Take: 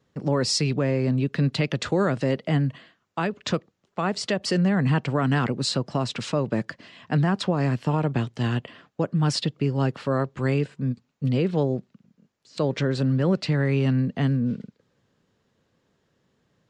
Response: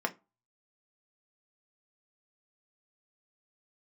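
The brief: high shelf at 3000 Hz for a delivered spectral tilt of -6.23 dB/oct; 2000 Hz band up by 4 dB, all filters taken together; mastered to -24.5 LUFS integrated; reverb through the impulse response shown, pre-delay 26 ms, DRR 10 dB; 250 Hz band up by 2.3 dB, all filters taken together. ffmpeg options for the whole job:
-filter_complex "[0:a]equalizer=f=250:t=o:g=3,equalizer=f=2k:t=o:g=6.5,highshelf=f=3k:g=-4.5,asplit=2[a][b];[1:a]atrim=start_sample=2205,adelay=26[c];[b][c]afir=irnorm=-1:irlink=0,volume=-17dB[d];[a][d]amix=inputs=2:normalize=0,volume=-1.5dB"

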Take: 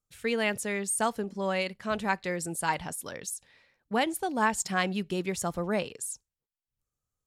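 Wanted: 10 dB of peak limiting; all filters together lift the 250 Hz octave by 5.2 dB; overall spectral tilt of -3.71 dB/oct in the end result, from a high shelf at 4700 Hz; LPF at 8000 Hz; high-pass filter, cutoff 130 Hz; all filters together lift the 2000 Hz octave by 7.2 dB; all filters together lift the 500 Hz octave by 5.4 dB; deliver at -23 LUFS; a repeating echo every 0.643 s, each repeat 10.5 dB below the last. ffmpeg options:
-af "highpass=130,lowpass=8k,equalizer=f=250:t=o:g=6.5,equalizer=f=500:t=o:g=4.5,equalizer=f=2k:t=o:g=7.5,highshelf=f=4.7k:g=5.5,alimiter=limit=-16dB:level=0:latency=1,aecho=1:1:643|1286|1929:0.299|0.0896|0.0269,volume=5dB"

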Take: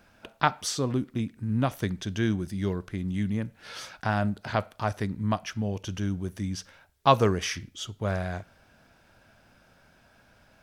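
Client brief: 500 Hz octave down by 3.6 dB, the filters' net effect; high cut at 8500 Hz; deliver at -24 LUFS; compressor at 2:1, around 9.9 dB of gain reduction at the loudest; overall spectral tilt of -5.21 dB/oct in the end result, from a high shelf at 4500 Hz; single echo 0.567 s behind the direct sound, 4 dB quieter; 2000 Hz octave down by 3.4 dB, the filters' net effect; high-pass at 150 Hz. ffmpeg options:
-af "highpass=150,lowpass=8.5k,equalizer=f=500:t=o:g=-4.5,equalizer=f=2k:t=o:g=-3.5,highshelf=f=4.5k:g=-5,acompressor=threshold=-34dB:ratio=2,aecho=1:1:567:0.631,volume=12dB"

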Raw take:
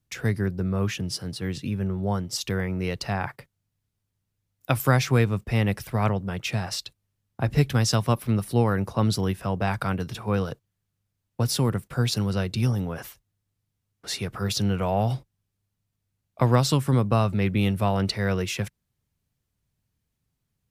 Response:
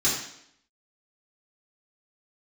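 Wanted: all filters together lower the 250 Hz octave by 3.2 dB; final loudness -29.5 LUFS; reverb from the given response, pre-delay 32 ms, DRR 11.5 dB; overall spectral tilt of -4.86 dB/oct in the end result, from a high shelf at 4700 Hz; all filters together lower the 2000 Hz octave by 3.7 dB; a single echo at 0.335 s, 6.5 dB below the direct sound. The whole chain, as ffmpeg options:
-filter_complex "[0:a]equalizer=f=250:t=o:g=-4.5,equalizer=f=2k:t=o:g=-6.5,highshelf=f=4.7k:g=8,aecho=1:1:335:0.473,asplit=2[a][b];[1:a]atrim=start_sample=2205,adelay=32[c];[b][c]afir=irnorm=-1:irlink=0,volume=-23.5dB[d];[a][d]amix=inputs=2:normalize=0,volume=-4dB"

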